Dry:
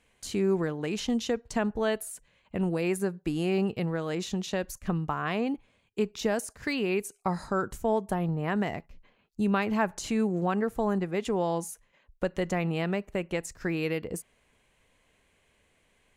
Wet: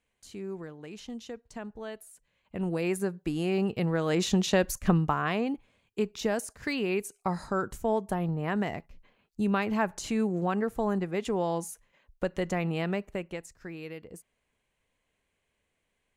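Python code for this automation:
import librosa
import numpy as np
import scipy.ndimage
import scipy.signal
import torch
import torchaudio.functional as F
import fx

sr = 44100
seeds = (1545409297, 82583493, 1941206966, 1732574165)

y = fx.gain(x, sr, db=fx.line((2.14, -12.0), (2.75, -1.0), (3.59, -1.0), (4.28, 6.5), (4.88, 6.5), (5.47, -1.0), (13.05, -1.0), (13.57, -11.0)))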